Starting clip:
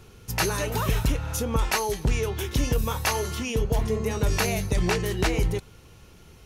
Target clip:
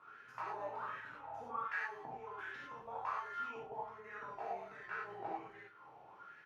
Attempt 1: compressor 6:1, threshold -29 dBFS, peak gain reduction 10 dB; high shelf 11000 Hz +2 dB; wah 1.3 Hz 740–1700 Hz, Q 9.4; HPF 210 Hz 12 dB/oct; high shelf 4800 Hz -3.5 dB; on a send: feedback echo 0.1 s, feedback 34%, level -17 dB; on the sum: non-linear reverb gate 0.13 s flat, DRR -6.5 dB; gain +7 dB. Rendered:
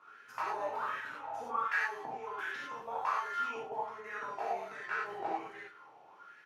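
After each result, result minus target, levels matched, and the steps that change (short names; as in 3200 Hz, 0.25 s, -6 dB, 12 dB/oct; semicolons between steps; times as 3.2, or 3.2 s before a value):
125 Hz band -8.0 dB; compressor: peak gain reduction -6 dB; 4000 Hz band +3.0 dB
change: HPF 100 Hz 12 dB/oct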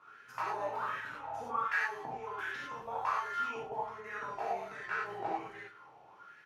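compressor: peak gain reduction -6 dB; 4000 Hz band +3.0 dB
change: compressor 6:1, threshold -36.5 dBFS, peak gain reduction 16.5 dB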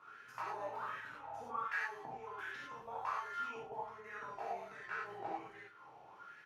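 4000 Hz band +3.0 dB
change: second high shelf 4800 Hz -15 dB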